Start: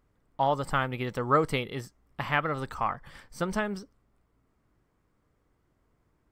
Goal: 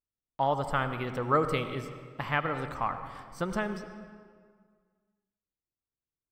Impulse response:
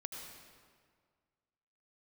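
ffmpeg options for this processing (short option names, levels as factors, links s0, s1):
-filter_complex "[0:a]agate=range=0.0355:threshold=0.00158:ratio=16:detection=peak,asplit=2[s0][s1];[1:a]atrim=start_sample=2205,highshelf=f=4500:g=-10[s2];[s1][s2]afir=irnorm=-1:irlink=0,volume=1.19[s3];[s0][s3]amix=inputs=2:normalize=0,volume=0.473"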